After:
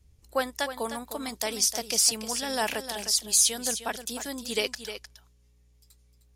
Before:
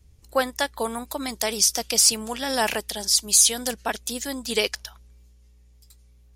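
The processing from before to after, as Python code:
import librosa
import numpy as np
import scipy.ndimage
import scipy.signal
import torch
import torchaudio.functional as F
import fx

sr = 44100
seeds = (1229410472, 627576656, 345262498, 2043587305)

y = x + 10.0 ** (-10.5 / 20.0) * np.pad(x, (int(307 * sr / 1000.0), 0))[:len(x)]
y = y * librosa.db_to_amplitude(-5.0)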